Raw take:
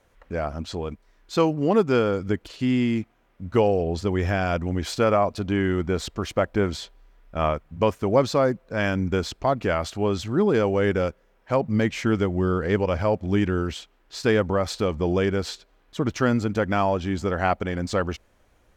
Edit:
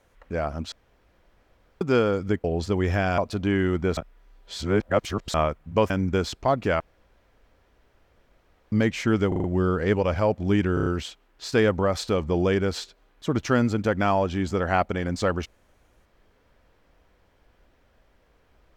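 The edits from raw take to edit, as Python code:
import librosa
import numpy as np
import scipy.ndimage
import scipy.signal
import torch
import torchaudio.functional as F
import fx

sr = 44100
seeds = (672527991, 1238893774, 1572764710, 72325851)

y = fx.edit(x, sr, fx.room_tone_fill(start_s=0.72, length_s=1.09),
    fx.cut(start_s=2.44, length_s=1.35),
    fx.cut(start_s=4.53, length_s=0.7),
    fx.reverse_span(start_s=6.02, length_s=1.37),
    fx.cut(start_s=7.95, length_s=0.94),
    fx.room_tone_fill(start_s=9.79, length_s=1.92),
    fx.stutter(start_s=12.27, slice_s=0.04, count=5),
    fx.stutter(start_s=13.57, slice_s=0.03, count=5), tone=tone)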